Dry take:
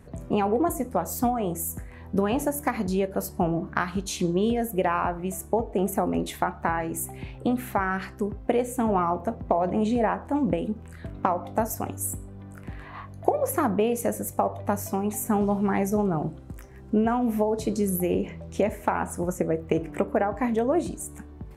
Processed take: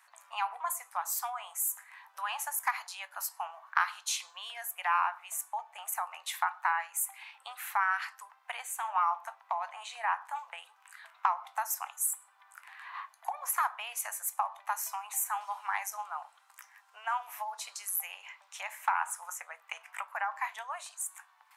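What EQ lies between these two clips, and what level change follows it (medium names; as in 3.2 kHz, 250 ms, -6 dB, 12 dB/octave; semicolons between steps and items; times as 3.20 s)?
steep high-pass 880 Hz 48 dB/octave; 0.0 dB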